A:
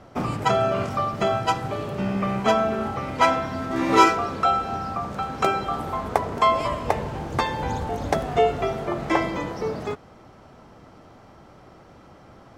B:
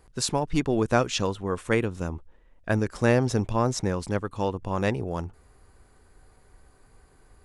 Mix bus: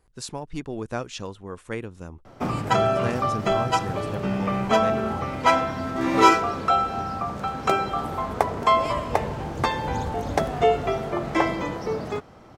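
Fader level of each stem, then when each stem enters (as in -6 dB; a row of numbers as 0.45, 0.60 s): 0.0, -8.0 dB; 2.25, 0.00 s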